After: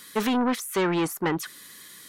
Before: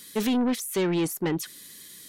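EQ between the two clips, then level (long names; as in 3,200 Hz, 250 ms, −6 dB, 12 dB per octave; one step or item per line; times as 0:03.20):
parametric band 1,200 Hz +11.5 dB 1.6 octaves
−1.5 dB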